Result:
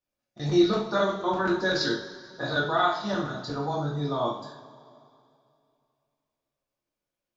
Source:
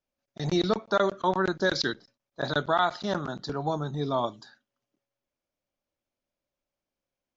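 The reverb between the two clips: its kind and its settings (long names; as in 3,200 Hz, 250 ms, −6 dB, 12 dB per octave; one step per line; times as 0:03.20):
coupled-rooms reverb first 0.48 s, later 2.6 s, from −18 dB, DRR −5.5 dB
level −6 dB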